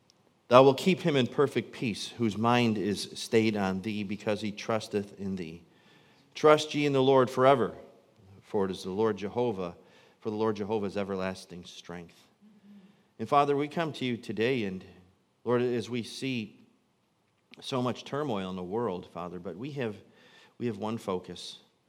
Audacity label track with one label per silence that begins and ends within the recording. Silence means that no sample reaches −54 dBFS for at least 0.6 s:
16.680000	17.510000	silence